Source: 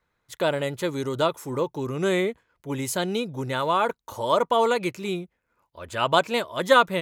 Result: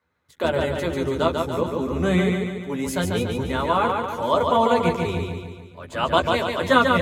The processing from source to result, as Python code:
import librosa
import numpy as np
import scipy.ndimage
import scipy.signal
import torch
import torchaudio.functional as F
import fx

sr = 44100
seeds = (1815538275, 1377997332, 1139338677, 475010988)

p1 = fx.octave_divider(x, sr, octaves=1, level_db=2.0)
p2 = scipy.signal.sosfilt(scipy.signal.butter(2, 85.0, 'highpass', fs=sr, output='sos'), p1)
p3 = fx.high_shelf(p2, sr, hz=4100.0, db=-6.0)
p4 = fx.hum_notches(p3, sr, base_hz=50, count=7)
p5 = fx.doubler(p4, sr, ms=12.0, db=-5.0)
p6 = p5 + fx.echo_feedback(p5, sr, ms=143, feedback_pct=53, wet_db=-4.0, dry=0)
y = fx.end_taper(p6, sr, db_per_s=270.0)